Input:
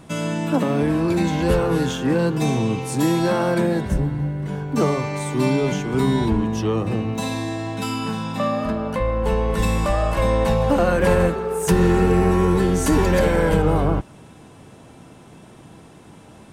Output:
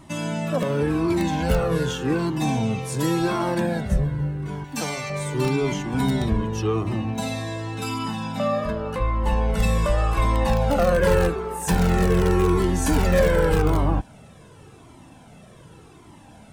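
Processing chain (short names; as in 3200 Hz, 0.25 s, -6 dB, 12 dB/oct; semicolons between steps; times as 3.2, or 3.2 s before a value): 4.64–5.1 tilt shelf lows -8.5 dB, about 1400 Hz; in parallel at -10 dB: wrapped overs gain 9 dB; on the sum: cascading flanger falling 0.87 Hz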